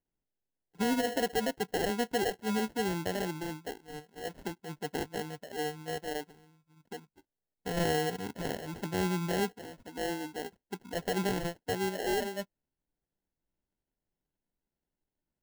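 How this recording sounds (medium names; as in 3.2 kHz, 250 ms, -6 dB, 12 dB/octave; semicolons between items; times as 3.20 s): aliases and images of a low sample rate 1.2 kHz, jitter 0%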